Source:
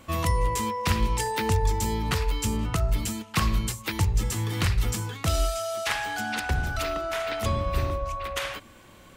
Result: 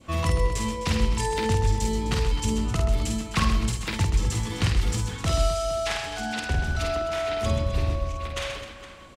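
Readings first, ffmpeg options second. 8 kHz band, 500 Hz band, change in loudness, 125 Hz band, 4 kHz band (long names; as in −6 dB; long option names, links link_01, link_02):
−0.5 dB, +2.5 dB, +1.0 dB, +1.5 dB, +1.0 dB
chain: -filter_complex "[0:a]lowpass=8000,asplit=2[link_01][link_02];[link_02]aecho=0:1:50|130|258|462.8|790.5:0.631|0.398|0.251|0.158|0.1[link_03];[link_01][link_03]amix=inputs=2:normalize=0,adynamicequalizer=threshold=0.01:dfrequency=1400:dqfactor=0.91:tfrequency=1400:tqfactor=0.91:attack=5:release=100:ratio=0.375:range=3:mode=cutabove:tftype=bell"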